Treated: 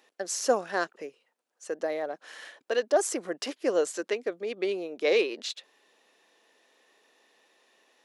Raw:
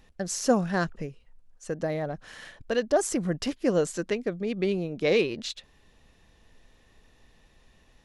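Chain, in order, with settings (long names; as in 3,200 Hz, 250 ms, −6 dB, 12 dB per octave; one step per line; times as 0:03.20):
high-pass filter 340 Hz 24 dB per octave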